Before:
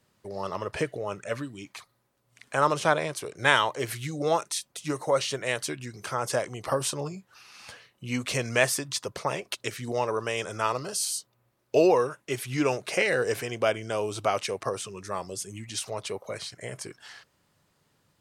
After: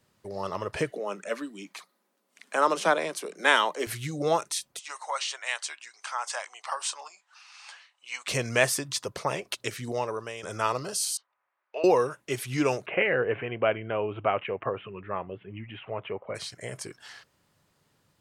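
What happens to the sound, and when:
0.90–3.87 s: steep high-pass 170 Hz 96 dB/octave
4.79–8.28 s: Chebyshev band-pass 830–8300 Hz, order 3
9.80–10.43 s: fade out, to -11.5 dB
11.17–11.84 s: Butterworth band-pass 1.4 kHz, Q 0.97
12.86–16.35 s: steep low-pass 3 kHz 72 dB/octave

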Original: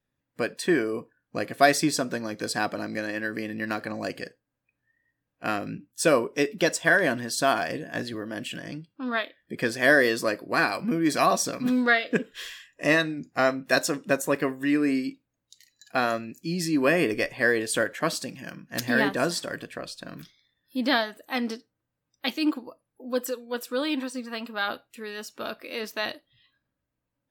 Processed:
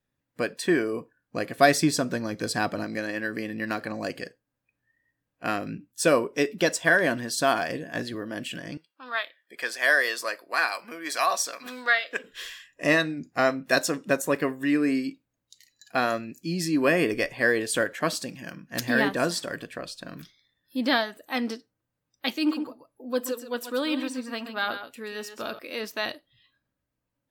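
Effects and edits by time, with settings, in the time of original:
1.58–2.84 s: bass shelf 130 Hz +10 dB
8.77–12.24 s: high-pass 790 Hz
22.36–25.59 s: multi-tap echo 127/134 ms -17.5/-10.5 dB

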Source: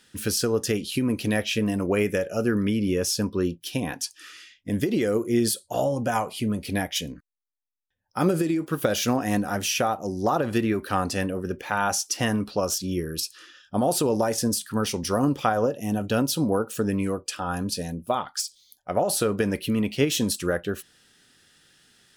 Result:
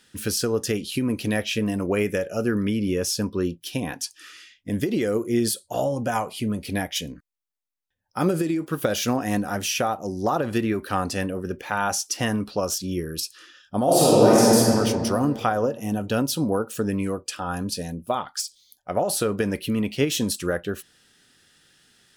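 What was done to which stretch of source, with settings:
13.84–14.57 s: reverb throw, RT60 2.5 s, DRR -8.5 dB

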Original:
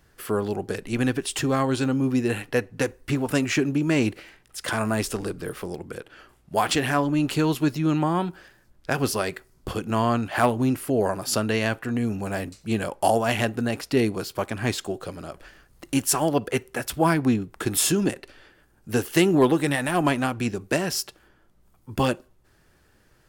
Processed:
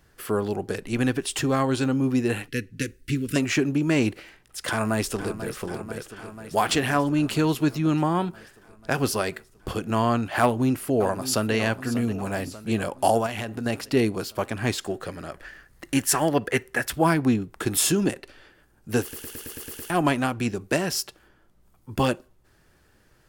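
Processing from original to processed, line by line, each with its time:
2.48–3.36 s: Butterworth band-stop 800 Hz, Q 0.51
4.69–5.57 s: echo throw 490 ms, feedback 75%, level -11.5 dB
10.41–11.53 s: echo throw 590 ms, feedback 60%, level -13.5 dB
13.26–13.66 s: compression 12:1, threshold -26 dBFS
14.84–16.93 s: peaking EQ 1.8 kHz +9.5 dB 0.48 oct
19.02 s: stutter in place 0.11 s, 8 plays

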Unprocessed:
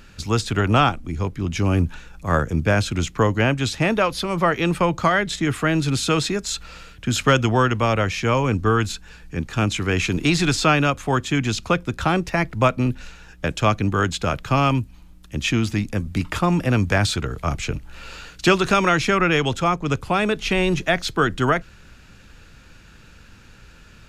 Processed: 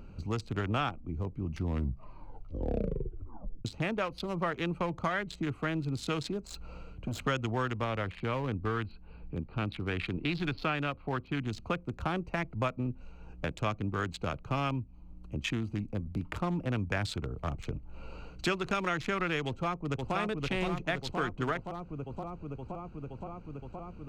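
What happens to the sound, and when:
1.38 s: tape stop 2.27 s
6.45–7.20 s: overload inside the chain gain 22 dB
7.84–11.47 s: elliptic low-pass 4.5 kHz
19.46–20.15 s: echo throw 520 ms, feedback 75%, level -3 dB
whole clip: local Wiener filter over 25 samples; dynamic bell 2.1 kHz, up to +3 dB, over -32 dBFS, Q 0.84; compression 2:1, threshold -40 dBFS

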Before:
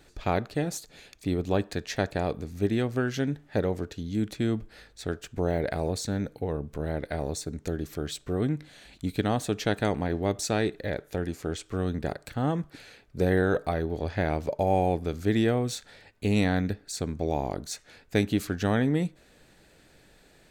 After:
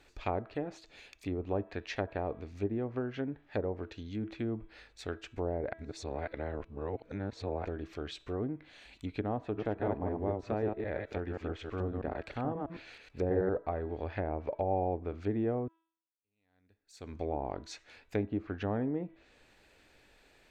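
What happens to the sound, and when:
5.73–7.65 s: reverse
9.45–13.49 s: chunks repeated in reverse 107 ms, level -3 dB
15.68–17.15 s: fade in exponential
whole clip: de-hum 327.1 Hz, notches 12; low-pass that closes with the level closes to 790 Hz, closed at -22.5 dBFS; fifteen-band graphic EQ 160 Hz -9 dB, 1 kHz +4 dB, 2.5 kHz +6 dB, 10 kHz -6 dB; trim -6 dB

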